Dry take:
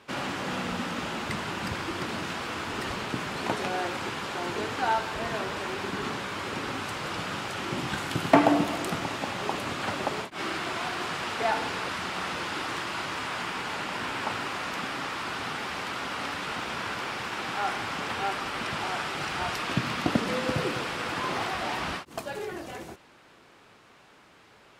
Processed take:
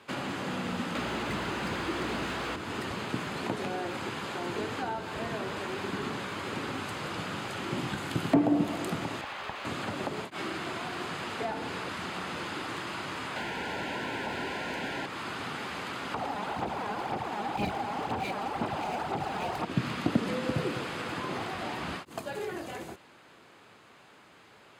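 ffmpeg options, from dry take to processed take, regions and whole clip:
-filter_complex "[0:a]asettb=1/sr,asplit=3[s0][s1][s2];[s0]atrim=end=0.954[s3];[s1]atrim=start=0.95:end=2.56,asetpts=PTS-STARTPTS,afade=t=in:d=0.004:c=qsin,afade=t=out:st=1.606:d=0.004:c=qsin,asplit=2[s4][s5];[s5]highpass=f=720:p=1,volume=14.1,asoftclip=type=tanh:threshold=0.119[s6];[s4][s6]amix=inputs=2:normalize=0,lowpass=f=4200:p=1,volume=0.501,aeval=exprs='val(0)+0.00708*(sin(2*PI*60*n/s)+sin(2*PI*2*60*n/s)/2+sin(2*PI*3*60*n/s)/3+sin(2*PI*4*60*n/s)/4+sin(2*PI*5*60*n/s)/5)':c=same[s7];[s2]atrim=start=2.556[s8];[s3][s7]acrossfade=d=0.004:c1=hsin:c2=qsin[s9];[s9][s8]acrossfade=d=0.004:c1=qsin:c2=hsin,asettb=1/sr,asplit=3[s10][s11][s12];[s10]atrim=end=9.214[s13];[s11]atrim=start=9.21:end=9.65,asetpts=PTS-STARTPTS,afade=t=in:d=0.004:c=qsin,afade=t=out:st=0.436:d=0.004:c=qsin,highpass=720,lowpass=3600,aeval=exprs='clip(val(0),-1,0.0133)':c=same[s14];[s12]atrim=start=9.646[s15];[s13][s14]acrossfade=d=0.004:c1=hsin:c2=qsin[s16];[s16][s15]acrossfade=d=0.004:c1=qsin:c2=hsin,asettb=1/sr,asplit=3[s17][s18][s19];[s17]atrim=end=13.364[s20];[s18]atrim=start=13.36:end=15.06,asetpts=PTS-STARTPTS,afade=t=in:d=0.004:c=qsin,afade=t=out:st=1.696:d=0.004:c=qsin,asplit=2[s21][s22];[s22]highpass=f=720:p=1,volume=14.1,asoftclip=type=tanh:threshold=0.126[s23];[s21][s23]amix=inputs=2:normalize=0,lowpass=f=2500:p=1,volume=0.501,asuperstop=centerf=1200:order=8:qfactor=3.9[s24];[s19]atrim=start=15.056[s25];[s20][s24]acrossfade=d=0.004:c1=hsin:c2=qsin[s26];[s26][s25]acrossfade=d=0.004:c1=qsin:c2=hsin,asettb=1/sr,asplit=3[s27][s28][s29];[s27]atrim=end=16.144[s30];[s28]atrim=start=16.14:end=19.65,asetpts=PTS-STARTPTS,afade=t=in:d=0.004:c=qsin,afade=t=out:st=3.506:d=0.004:c=qsin,equalizer=f=790:t=o:w=0.75:g=14.5,aeval=exprs='0.106*(abs(mod(val(0)/0.106+3,4)-2)-1)':c=same,aphaser=in_gain=1:out_gain=1:delay=4.9:decay=0.54:speed=2:type=sinusoidal[s31];[s29]atrim=start=19.646[s32];[s30][s31]acrossfade=d=0.004:c1=hsin:c2=qsin[s33];[s33][s32]acrossfade=d=0.004:c1=qsin:c2=hsin,highpass=74,bandreject=f=5600:w=8.7,acrossover=split=470[s34][s35];[s35]acompressor=threshold=0.0178:ratio=6[s36];[s34][s36]amix=inputs=2:normalize=0"

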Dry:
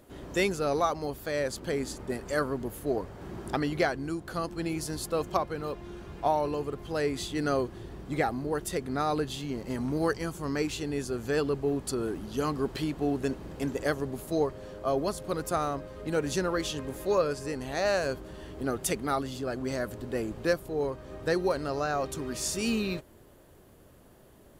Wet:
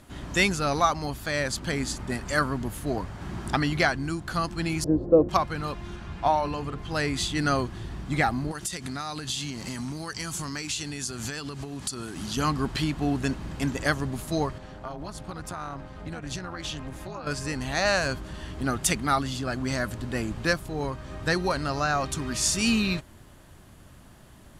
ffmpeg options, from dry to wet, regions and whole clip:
-filter_complex "[0:a]asettb=1/sr,asplit=3[s0][s1][s2];[s0]atrim=end=4.844[s3];[s1]atrim=start=4.84:end=5.29,asetpts=PTS-STARTPTS,afade=t=in:d=0.004:c=qsin,afade=t=out:st=0.446:d=0.004:c=qsin,lowpass=f=520:t=q:w=6,equalizer=f=320:t=o:w=0.53:g=10.5[s4];[s2]atrim=start=5.286[s5];[s3][s4]acrossfade=d=0.004:c1=hsin:c2=qsin[s6];[s6][s5]acrossfade=d=0.004:c1=qsin:c2=hsin,asettb=1/sr,asplit=3[s7][s8][s9];[s7]atrim=end=5.964[s10];[s8]atrim=start=5.96:end=6.92,asetpts=PTS-STARTPTS,afade=t=in:d=0.004:c=qsin,afade=t=out:st=0.956:d=0.004:c=qsin,highshelf=f=6900:g=-9,bandreject=f=50:t=h:w=6,bandreject=f=100:t=h:w=6,bandreject=f=150:t=h:w=6,bandreject=f=200:t=h:w=6,bandreject=f=250:t=h:w=6,bandreject=f=300:t=h:w=6,bandreject=f=350:t=h:w=6,bandreject=f=400:t=h:w=6,bandreject=f=450:t=h:w=6[s11];[s9]atrim=start=6.916[s12];[s10][s11]acrossfade=d=0.004:c1=hsin:c2=qsin[s13];[s13][s12]acrossfade=d=0.004:c1=qsin:c2=hsin,asettb=1/sr,asplit=3[s14][s15][s16];[s14]atrim=end=8.514[s17];[s15]atrim=start=8.51:end=12.37,asetpts=PTS-STARTPTS,afade=t=in:d=0.004:c=qsin,afade=t=out:st=3.856:d=0.004:c=qsin,highpass=76,equalizer=f=7400:w=0.41:g=11,acompressor=threshold=0.02:ratio=10:attack=3.2:release=140:knee=1:detection=peak[s18];[s16]atrim=start=12.366[s19];[s17][s18]acrossfade=d=0.004:c1=hsin:c2=qsin[s20];[s20][s19]acrossfade=d=0.004:c1=qsin:c2=hsin,asettb=1/sr,asplit=3[s21][s22][s23];[s21]atrim=end=14.584[s24];[s22]atrim=start=14.58:end=17.27,asetpts=PTS-STARTPTS,afade=t=in:d=0.004:c=qsin,afade=t=out:st=2.686:d=0.004:c=qsin,highshelf=f=4900:g=-7.5,tremolo=f=250:d=0.75,acompressor=threshold=0.02:ratio=10:attack=3.2:release=140:knee=1:detection=peak[s25];[s23]atrim=start=17.266[s26];[s24][s25]acrossfade=d=0.004:c1=hsin:c2=qsin[s27];[s27][s26]acrossfade=d=0.004:c1=qsin:c2=hsin,lowpass=10000,equalizer=f=450:t=o:w=1.1:g=-13,volume=2.66"

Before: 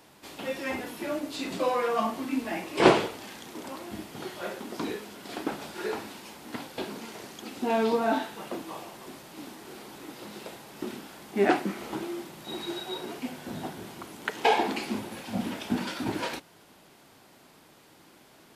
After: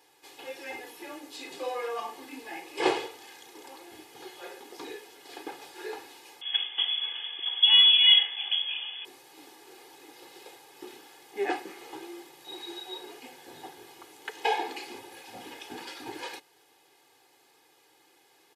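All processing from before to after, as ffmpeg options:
-filter_complex "[0:a]asettb=1/sr,asplit=3[s0][s1][s2];[s0]atrim=end=6.414[s3];[s1]atrim=start=6.41:end=9.05,asetpts=PTS-STARTPTS,afade=t=in:d=0.004:c=qsin,afade=t=out:st=2.636:d=0.004:c=qsin,acontrast=65,lowshelf=f=280:g=12,lowpass=f=3100:t=q:w=0.5098,lowpass=f=3100:t=q:w=0.6013,lowpass=f=3100:t=q:w=0.9,lowpass=f=3100:t=q:w=2.563,afreqshift=-3600[s4];[s2]atrim=start=9.046[s5];[s3][s4]acrossfade=d=0.004:c1=hsin:c2=qsin[s6];[s6][s5]acrossfade=d=0.004:c1=qsin:c2=hsin,highpass=f=540:p=1,bandreject=f=1300:w=7.3,aecho=1:1:2.4:0.84,volume=0.473"

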